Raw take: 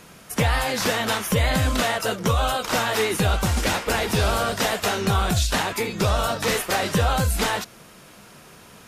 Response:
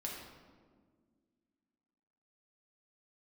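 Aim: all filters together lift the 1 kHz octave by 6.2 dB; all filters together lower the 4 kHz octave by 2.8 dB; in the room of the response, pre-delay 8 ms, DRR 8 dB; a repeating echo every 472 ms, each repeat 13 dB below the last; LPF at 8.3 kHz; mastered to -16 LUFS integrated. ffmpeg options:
-filter_complex "[0:a]lowpass=8300,equalizer=f=1000:t=o:g=8.5,equalizer=f=4000:t=o:g=-4,aecho=1:1:472|944|1416:0.224|0.0493|0.0108,asplit=2[s0][s1];[1:a]atrim=start_sample=2205,adelay=8[s2];[s1][s2]afir=irnorm=-1:irlink=0,volume=0.398[s3];[s0][s3]amix=inputs=2:normalize=0,volume=1.5"

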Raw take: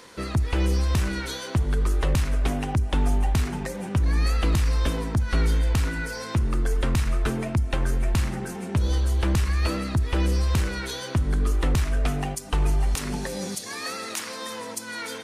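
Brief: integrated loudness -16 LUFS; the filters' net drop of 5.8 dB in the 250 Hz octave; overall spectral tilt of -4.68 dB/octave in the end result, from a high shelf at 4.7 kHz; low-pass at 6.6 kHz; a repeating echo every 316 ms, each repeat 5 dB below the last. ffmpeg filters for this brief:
-af "lowpass=6600,equalizer=f=250:t=o:g=-8.5,highshelf=f=4700:g=6,aecho=1:1:316|632|948|1264|1580|1896|2212:0.562|0.315|0.176|0.0988|0.0553|0.031|0.0173,volume=2.82"

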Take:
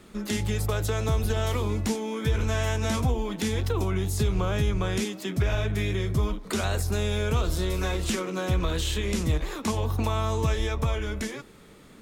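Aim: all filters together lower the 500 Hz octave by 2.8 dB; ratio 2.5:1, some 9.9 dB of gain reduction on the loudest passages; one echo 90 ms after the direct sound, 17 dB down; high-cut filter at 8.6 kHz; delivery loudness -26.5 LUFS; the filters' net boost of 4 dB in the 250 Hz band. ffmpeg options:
-af "lowpass=8600,equalizer=f=250:t=o:g=6.5,equalizer=f=500:t=o:g=-6,acompressor=threshold=0.0178:ratio=2.5,aecho=1:1:90:0.141,volume=2.82"

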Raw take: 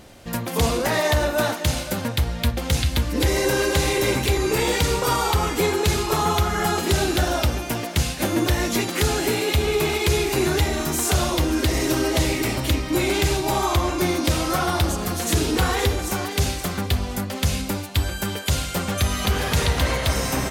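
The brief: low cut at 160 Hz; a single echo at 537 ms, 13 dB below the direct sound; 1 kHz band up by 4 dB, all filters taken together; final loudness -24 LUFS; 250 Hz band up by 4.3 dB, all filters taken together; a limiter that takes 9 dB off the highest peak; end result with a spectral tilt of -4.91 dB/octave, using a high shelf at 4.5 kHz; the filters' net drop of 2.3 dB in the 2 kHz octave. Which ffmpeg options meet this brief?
-af "highpass=160,equalizer=f=250:t=o:g=6.5,equalizer=f=1000:t=o:g=6,equalizer=f=2000:t=o:g=-3.5,highshelf=f=4500:g=-8,alimiter=limit=0.178:level=0:latency=1,aecho=1:1:537:0.224"

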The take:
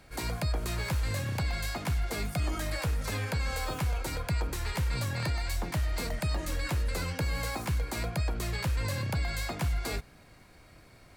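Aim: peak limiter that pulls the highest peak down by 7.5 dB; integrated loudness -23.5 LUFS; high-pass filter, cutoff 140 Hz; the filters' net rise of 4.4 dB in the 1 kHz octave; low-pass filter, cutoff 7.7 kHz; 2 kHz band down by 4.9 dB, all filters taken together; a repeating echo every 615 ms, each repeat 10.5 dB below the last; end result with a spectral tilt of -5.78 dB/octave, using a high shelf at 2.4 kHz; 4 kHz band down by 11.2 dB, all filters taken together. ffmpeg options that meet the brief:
-af "highpass=140,lowpass=7700,equalizer=f=1000:t=o:g=8,equalizer=f=2000:t=o:g=-4.5,highshelf=f=2400:g=-4.5,equalizer=f=4000:t=o:g=-8.5,alimiter=level_in=1.41:limit=0.0631:level=0:latency=1,volume=0.708,aecho=1:1:615|1230|1845:0.299|0.0896|0.0269,volume=5.31"

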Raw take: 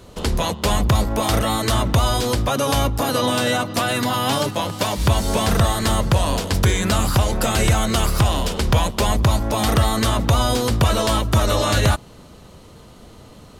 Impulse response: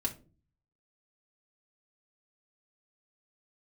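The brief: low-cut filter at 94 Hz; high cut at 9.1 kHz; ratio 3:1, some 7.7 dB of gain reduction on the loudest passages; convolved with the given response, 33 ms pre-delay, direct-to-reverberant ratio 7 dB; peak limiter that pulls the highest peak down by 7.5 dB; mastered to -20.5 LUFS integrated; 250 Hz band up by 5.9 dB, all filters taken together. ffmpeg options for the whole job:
-filter_complex "[0:a]highpass=94,lowpass=9100,equalizer=f=250:t=o:g=7.5,acompressor=threshold=0.0794:ratio=3,alimiter=limit=0.168:level=0:latency=1,asplit=2[s0][s1];[1:a]atrim=start_sample=2205,adelay=33[s2];[s1][s2]afir=irnorm=-1:irlink=0,volume=0.316[s3];[s0][s3]amix=inputs=2:normalize=0,volume=1.5"

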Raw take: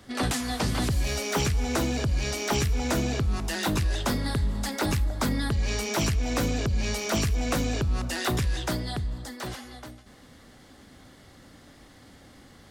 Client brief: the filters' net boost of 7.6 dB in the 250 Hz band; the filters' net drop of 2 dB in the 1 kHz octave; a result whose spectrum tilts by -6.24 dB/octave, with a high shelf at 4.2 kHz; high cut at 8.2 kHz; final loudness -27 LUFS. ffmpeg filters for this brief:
-af "lowpass=8200,equalizer=f=250:t=o:g=9,equalizer=f=1000:t=o:g=-3,highshelf=f=4200:g=-6,volume=0.794"

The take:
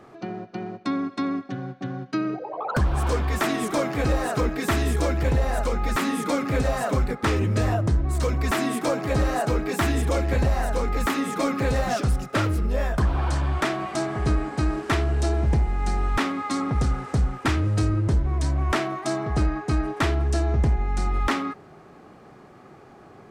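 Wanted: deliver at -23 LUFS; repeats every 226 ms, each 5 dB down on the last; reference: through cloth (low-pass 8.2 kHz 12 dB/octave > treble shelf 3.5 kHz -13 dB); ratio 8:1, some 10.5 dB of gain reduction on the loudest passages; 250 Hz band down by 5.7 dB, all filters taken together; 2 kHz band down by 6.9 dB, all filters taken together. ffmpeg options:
-af "equalizer=f=250:t=o:g=-7.5,equalizer=f=2000:t=o:g=-5,acompressor=threshold=0.0355:ratio=8,lowpass=8200,highshelf=f=3500:g=-13,aecho=1:1:226|452|678|904|1130|1356|1582:0.562|0.315|0.176|0.0988|0.0553|0.031|0.0173,volume=3.35"

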